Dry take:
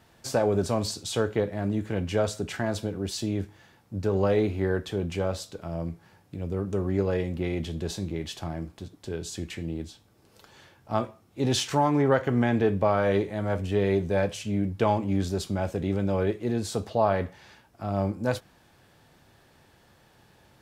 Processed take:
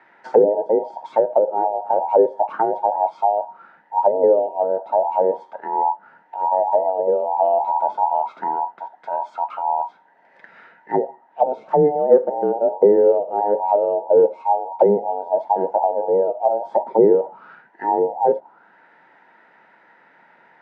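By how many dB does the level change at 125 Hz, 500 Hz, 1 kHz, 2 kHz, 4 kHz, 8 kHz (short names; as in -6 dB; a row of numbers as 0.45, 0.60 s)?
-12.5 dB, +10.5 dB, +14.0 dB, n/a, under -20 dB, under -30 dB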